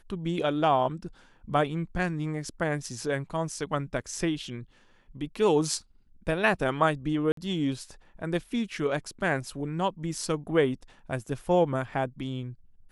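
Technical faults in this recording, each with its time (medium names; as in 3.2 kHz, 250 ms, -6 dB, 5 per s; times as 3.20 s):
7.32–7.37 s: dropout 53 ms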